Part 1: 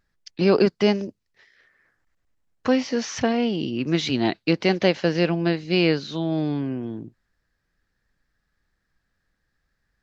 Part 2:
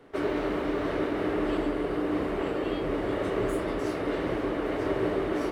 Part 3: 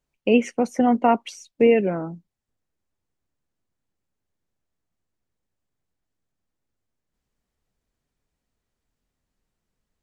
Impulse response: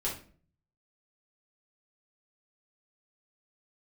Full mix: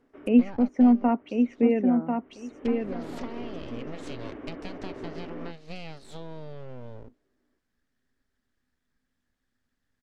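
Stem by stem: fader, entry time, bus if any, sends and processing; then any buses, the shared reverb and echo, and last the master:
-6.0 dB, 0.00 s, no send, no echo send, compression 8:1, threshold -29 dBFS, peak gain reduction 16 dB; full-wave rectifier
-13.5 dB, 0.00 s, no send, echo send -21 dB, Savitzky-Golay filter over 25 samples; auto duck -19 dB, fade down 0.55 s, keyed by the third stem
-9.0 dB, 0.00 s, no send, echo send -5 dB, none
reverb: none
echo: feedback delay 1043 ms, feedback 15%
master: low-pass that closes with the level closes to 2.3 kHz, closed at -28 dBFS; peaking EQ 250 Hz +13 dB 0.26 oct

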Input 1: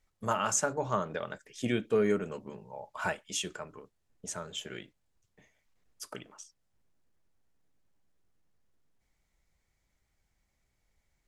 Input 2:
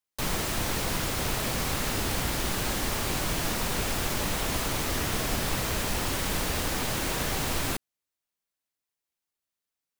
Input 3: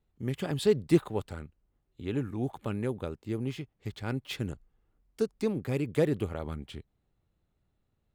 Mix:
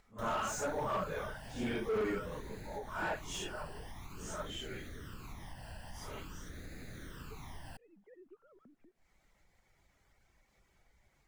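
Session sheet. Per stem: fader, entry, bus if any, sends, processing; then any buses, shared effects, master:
+2.0 dB, 0.00 s, no bus, no send, phase randomisation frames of 200 ms; bass shelf 370 Hz -7 dB; reverb removal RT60 0.52 s
-12.0 dB, 0.00 s, bus A, no send, none
-15.0 dB, 2.10 s, bus A, no send, formants replaced by sine waves; low-pass 1.6 kHz
bus A: 0.0 dB, phase shifter stages 12, 0.48 Hz, lowest notch 380–1000 Hz; compression, threshold -42 dBFS, peak gain reduction 10 dB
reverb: none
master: overload inside the chain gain 30 dB; upward compressor, threshold -56 dBFS; treble shelf 2.9 kHz -10.5 dB

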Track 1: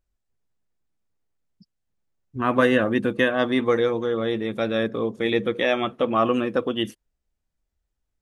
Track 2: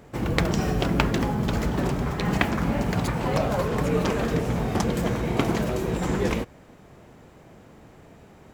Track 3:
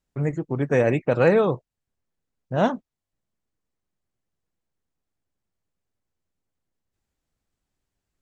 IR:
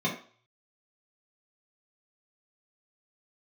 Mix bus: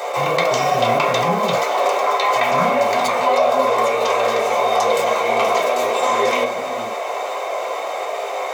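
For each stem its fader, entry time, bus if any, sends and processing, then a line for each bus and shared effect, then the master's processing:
-16.5 dB, 0.00 s, send -8.5 dB, none
+1.5 dB, 0.00 s, send -5 dB, steep high-pass 520 Hz 36 dB/octave; band-stop 1.7 kHz, Q 11; level flattener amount 70%
-15.0 dB, 0.00 s, send -4.5 dB, none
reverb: on, RT60 0.45 s, pre-delay 3 ms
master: none

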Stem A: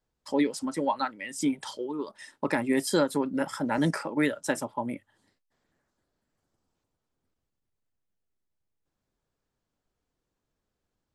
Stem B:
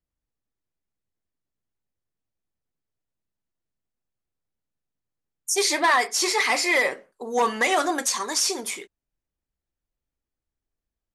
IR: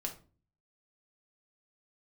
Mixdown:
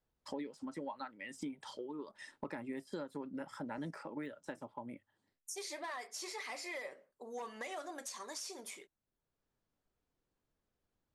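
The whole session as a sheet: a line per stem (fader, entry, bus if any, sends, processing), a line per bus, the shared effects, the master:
-3.5 dB, 0.00 s, no send, de-esser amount 90%; treble shelf 6.6 kHz -9 dB; auto duck -9 dB, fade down 1.70 s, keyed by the second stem
-16.5 dB, 0.00 s, no send, peaking EQ 590 Hz +7 dB 0.32 oct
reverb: none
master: compression 4:1, threshold -42 dBFS, peak gain reduction 16 dB

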